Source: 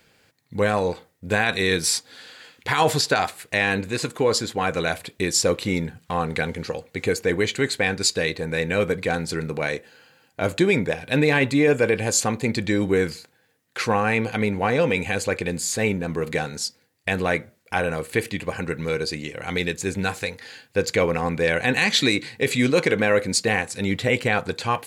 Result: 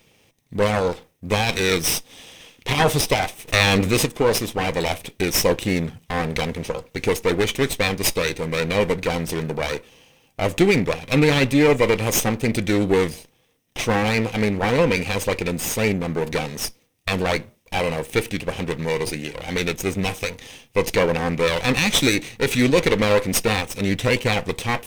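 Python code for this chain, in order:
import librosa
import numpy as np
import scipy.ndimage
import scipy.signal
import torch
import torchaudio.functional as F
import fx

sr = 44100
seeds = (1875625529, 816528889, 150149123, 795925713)

y = fx.lower_of_two(x, sr, delay_ms=0.33)
y = fx.env_flatten(y, sr, amount_pct=50, at=(3.47, 4.04), fade=0.02)
y = F.gain(torch.from_numpy(y), 3.0).numpy()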